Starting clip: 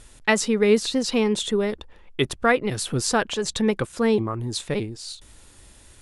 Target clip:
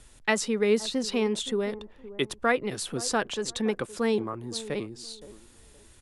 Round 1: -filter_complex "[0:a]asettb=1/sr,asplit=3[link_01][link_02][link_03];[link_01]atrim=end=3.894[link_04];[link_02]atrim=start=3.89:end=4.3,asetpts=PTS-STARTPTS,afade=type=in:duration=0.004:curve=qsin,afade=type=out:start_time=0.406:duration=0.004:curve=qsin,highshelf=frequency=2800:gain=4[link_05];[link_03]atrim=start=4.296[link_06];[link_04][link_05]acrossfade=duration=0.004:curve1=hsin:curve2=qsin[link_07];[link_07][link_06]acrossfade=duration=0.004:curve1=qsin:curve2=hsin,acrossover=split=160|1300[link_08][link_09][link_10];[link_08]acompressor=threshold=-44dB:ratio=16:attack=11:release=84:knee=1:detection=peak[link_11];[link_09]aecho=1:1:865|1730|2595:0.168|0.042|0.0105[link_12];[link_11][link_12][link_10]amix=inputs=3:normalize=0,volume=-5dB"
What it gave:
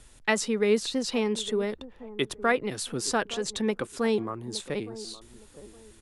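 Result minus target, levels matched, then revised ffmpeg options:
echo 346 ms late
-filter_complex "[0:a]asettb=1/sr,asplit=3[link_01][link_02][link_03];[link_01]atrim=end=3.894[link_04];[link_02]atrim=start=3.89:end=4.3,asetpts=PTS-STARTPTS,afade=type=in:duration=0.004:curve=qsin,afade=type=out:start_time=0.406:duration=0.004:curve=qsin,highshelf=frequency=2800:gain=4[link_05];[link_03]atrim=start=4.296[link_06];[link_04][link_05]acrossfade=duration=0.004:curve1=hsin:curve2=qsin[link_07];[link_07][link_06]acrossfade=duration=0.004:curve1=qsin:curve2=hsin,acrossover=split=160|1300[link_08][link_09][link_10];[link_08]acompressor=threshold=-44dB:ratio=16:attack=11:release=84:knee=1:detection=peak[link_11];[link_09]aecho=1:1:519|1038|1557:0.168|0.042|0.0105[link_12];[link_11][link_12][link_10]amix=inputs=3:normalize=0,volume=-5dB"

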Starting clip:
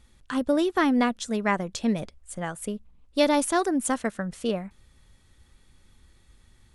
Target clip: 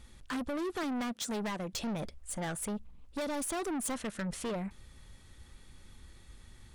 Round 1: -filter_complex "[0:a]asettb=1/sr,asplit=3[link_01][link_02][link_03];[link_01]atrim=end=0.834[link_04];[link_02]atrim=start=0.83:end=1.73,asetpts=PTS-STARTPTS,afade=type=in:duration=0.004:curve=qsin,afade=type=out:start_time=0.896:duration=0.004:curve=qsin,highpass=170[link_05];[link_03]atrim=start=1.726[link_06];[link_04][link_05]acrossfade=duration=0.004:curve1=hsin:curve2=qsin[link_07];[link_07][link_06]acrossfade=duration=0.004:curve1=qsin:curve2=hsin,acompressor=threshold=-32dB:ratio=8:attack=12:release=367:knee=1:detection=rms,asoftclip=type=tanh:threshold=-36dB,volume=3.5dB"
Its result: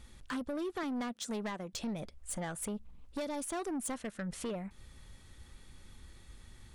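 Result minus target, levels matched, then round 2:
downward compressor: peak gain reduction +7.5 dB
-filter_complex "[0:a]asettb=1/sr,asplit=3[link_01][link_02][link_03];[link_01]atrim=end=0.834[link_04];[link_02]atrim=start=0.83:end=1.73,asetpts=PTS-STARTPTS,afade=type=in:duration=0.004:curve=qsin,afade=type=out:start_time=0.896:duration=0.004:curve=qsin,highpass=170[link_05];[link_03]atrim=start=1.726[link_06];[link_04][link_05]acrossfade=duration=0.004:curve1=hsin:curve2=qsin[link_07];[link_07][link_06]acrossfade=duration=0.004:curve1=qsin:curve2=hsin,acompressor=threshold=-23.5dB:ratio=8:attack=12:release=367:knee=1:detection=rms,asoftclip=type=tanh:threshold=-36dB,volume=3.5dB"

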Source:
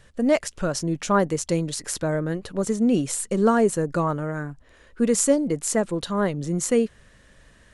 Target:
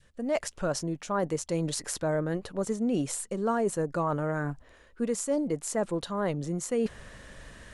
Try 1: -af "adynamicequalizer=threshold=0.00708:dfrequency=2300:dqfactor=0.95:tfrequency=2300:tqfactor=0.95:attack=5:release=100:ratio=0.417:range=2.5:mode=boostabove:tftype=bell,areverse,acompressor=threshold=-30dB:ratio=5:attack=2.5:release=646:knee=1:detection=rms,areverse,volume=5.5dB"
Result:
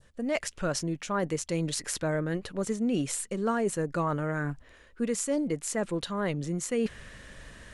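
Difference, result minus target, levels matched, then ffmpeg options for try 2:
2,000 Hz band +3.0 dB
-af "adynamicequalizer=threshold=0.00708:dfrequency=780:dqfactor=0.95:tfrequency=780:tqfactor=0.95:attack=5:release=100:ratio=0.417:range=2.5:mode=boostabove:tftype=bell,areverse,acompressor=threshold=-30dB:ratio=5:attack=2.5:release=646:knee=1:detection=rms,areverse,volume=5.5dB"

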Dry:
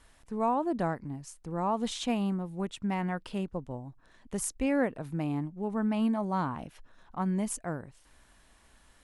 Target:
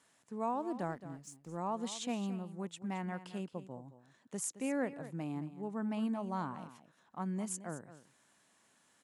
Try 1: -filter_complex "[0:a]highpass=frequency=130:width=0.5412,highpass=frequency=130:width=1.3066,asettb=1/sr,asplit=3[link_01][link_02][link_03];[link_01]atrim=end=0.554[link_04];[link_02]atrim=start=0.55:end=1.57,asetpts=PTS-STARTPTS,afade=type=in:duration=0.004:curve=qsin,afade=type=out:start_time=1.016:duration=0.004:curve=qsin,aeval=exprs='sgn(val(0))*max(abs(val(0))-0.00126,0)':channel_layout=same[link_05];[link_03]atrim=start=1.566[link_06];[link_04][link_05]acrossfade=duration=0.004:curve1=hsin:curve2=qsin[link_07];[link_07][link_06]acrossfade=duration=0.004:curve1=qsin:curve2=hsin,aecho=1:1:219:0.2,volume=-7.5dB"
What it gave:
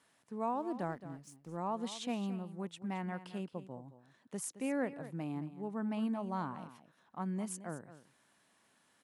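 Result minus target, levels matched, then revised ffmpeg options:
8,000 Hz band −3.5 dB
-filter_complex "[0:a]highpass=frequency=130:width=0.5412,highpass=frequency=130:width=1.3066,equalizer=frequency=7100:width_type=o:width=0.48:gain=7,asettb=1/sr,asplit=3[link_01][link_02][link_03];[link_01]atrim=end=0.554[link_04];[link_02]atrim=start=0.55:end=1.57,asetpts=PTS-STARTPTS,afade=type=in:duration=0.004:curve=qsin,afade=type=out:start_time=1.016:duration=0.004:curve=qsin,aeval=exprs='sgn(val(0))*max(abs(val(0))-0.00126,0)':channel_layout=same[link_05];[link_03]atrim=start=1.566[link_06];[link_04][link_05]acrossfade=duration=0.004:curve1=hsin:curve2=qsin[link_07];[link_07][link_06]acrossfade=duration=0.004:curve1=qsin:curve2=hsin,aecho=1:1:219:0.2,volume=-7.5dB"

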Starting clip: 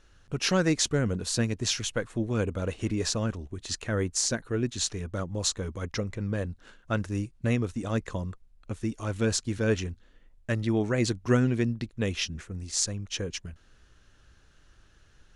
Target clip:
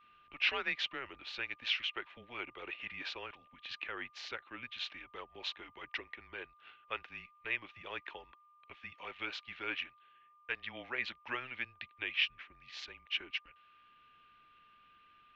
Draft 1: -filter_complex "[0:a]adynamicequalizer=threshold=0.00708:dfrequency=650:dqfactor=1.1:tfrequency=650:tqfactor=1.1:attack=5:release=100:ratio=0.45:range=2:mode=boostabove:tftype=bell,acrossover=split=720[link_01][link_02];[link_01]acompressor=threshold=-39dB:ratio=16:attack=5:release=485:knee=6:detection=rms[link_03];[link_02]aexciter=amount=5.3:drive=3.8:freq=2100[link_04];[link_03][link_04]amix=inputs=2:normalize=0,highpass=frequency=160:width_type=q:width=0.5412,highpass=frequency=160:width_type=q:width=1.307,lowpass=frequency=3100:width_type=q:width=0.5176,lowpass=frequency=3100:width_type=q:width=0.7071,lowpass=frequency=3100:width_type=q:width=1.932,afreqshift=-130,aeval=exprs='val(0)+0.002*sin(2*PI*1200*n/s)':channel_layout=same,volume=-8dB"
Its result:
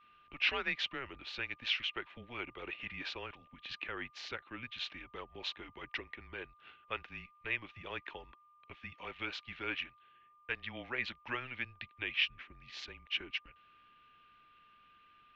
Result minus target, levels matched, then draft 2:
downward compressor: peak gain reduction −9 dB
-filter_complex "[0:a]adynamicequalizer=threshold=0.00708:dfrequency=650:dqfactor=1.1:tfrequency=650:tqfactor=1.1:attack=5:release=100:ratio=0.45:range=2:mode=boostabove:tftype=bell,acrossover=split=720[link_01][link_02];[link_01]acompressor=threshold=-48.5dB:ratio=16:attack=5:release=485:knee=6:detection=rms[link_03];[link_02]aexciter=amount=5.3:drive=3.8:freq=2100[link_04];[link_03][link_04]amix=inputs=2:normalize=0,highpass=frequency=160:width_type=q:width=0.5412,highpass=frequency=160:width_type=q:width=1.307,lowpass=frequency=3100:width_type=q:width=0.5176,lowpass=frequency=3100:width_type=q:width=0.7071,lowpass=frequency=3100:width_type=q:width=1.932,afreqshift=-130,aeval=exprs='val(0)+0.002*sin(2*PI*1200*n/s)':channel_layout=same,volume=-8dB"

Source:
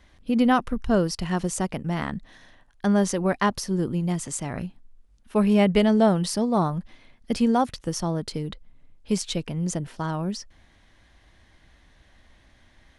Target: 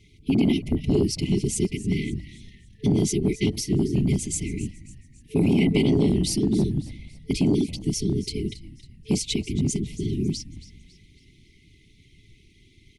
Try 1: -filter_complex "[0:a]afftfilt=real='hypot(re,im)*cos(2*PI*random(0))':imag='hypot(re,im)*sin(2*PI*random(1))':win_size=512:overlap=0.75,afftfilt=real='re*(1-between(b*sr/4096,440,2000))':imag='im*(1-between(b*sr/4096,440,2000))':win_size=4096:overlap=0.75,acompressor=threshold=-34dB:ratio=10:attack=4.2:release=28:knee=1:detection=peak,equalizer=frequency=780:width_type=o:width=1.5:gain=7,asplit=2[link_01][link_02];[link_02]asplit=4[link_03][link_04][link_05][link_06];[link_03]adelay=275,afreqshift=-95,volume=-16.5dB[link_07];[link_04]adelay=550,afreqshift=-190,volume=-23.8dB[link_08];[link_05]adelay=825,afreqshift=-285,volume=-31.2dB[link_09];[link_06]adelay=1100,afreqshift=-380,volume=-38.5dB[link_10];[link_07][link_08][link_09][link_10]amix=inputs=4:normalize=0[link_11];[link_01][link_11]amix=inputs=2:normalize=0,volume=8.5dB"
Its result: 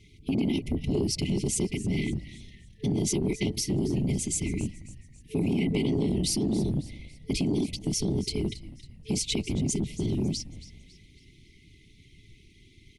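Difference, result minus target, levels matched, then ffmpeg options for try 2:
downward compressor: peak gain reduction +7 dB
-filter_complex "[0:a]afftfilt=real='hypot(re,im)*cos(2*PI*random(0))':imag='hypot(re,im)*sin(2*PI*random(1))':win_size=512:overlap=0.75,afftfilt=real='re*(1-between(b*sr/4096,440,2000))':imag='im*(1-between(b*sr/4096,440,2000))':win_size=4096:overlap=0.75,acompressor=threshold=-26.5dB:ratio=10:attack=4.2:release=28:knee=1:detection=peak,equalizer=frequency=780:width_type=o:width=1.5:gain=7,asplit=2[link_01][link_02];[link_02]asplit=4[link_03][link_04][link_05][link_06];[link_03]adelay=275,afreqshift=-95,volume=-16.5dB[link_07];[link_04]adelay=550,afreqshift=-190,volume=-23.8dB[link_08];[link_05]adelay=825,afreqshift=-285,volume=-31.2dB[link_09];[link_06]adelay=1100,afreqshift=-380,volume=-38.5dB[link_10];[link_07][link_08][link_09][link_10]amix=inputs=4:normalize=0[link_11];[link_01][link_11]amix=inputs=2:normalize=0,volume=8.5dB"

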